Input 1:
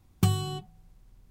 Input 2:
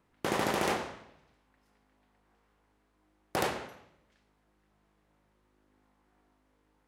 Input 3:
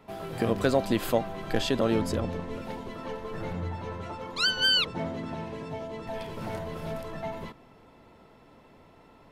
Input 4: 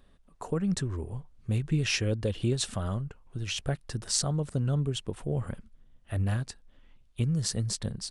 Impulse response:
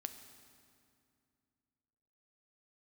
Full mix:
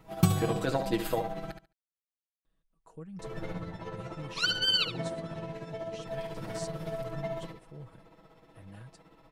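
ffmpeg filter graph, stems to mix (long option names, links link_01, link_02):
-filter_complex "[0:a]volume=-1.5dB,asplit=2[link_01][link_02];[link_02]volume=-10dB[link_03];[2:a]tremolo=f=16:d=0.55,volume=-3.5dB,asplit=3[link_04][link_05][link_06];[link_04]atrim=end=1.51,asetpts=PTS-STARTPTS,afade=type=out:start_time=1.506:duration=0.004:curve=hsin[link_07];[link_05]atrim=start=1.51:end=3.19,asetpts=PTS-STARTPTS,volume=0[link_08];[link_06]atrim=start=3.19,asetpts=PTS-STARTPTS,afade=type=in:duration=0.004:curve=hsin[link_09];[link_07][link_08][link_09]concat=n=3:v=0:a=1,asplit=2[link_10][link_11];[link_11]volume=-8.5dB[link_12];[3:a]adelay=2450,volume=-19.5dB[link_13];[link_03][link_12]amix=inputs=2:normalize=0,aecho=0:1:71|142|213:1|0.18|0.0324[link_14];[link_01][link_10][link_13][link_14]amix=inputs=4:normalize=0,aecho=1:1:6.2:0.79"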